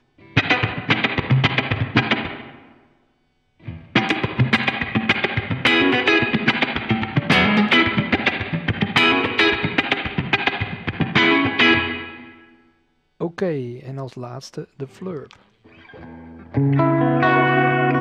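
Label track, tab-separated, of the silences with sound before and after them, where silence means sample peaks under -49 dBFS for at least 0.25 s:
3.000000	3.600000	silence
12.690000	13.200000	silence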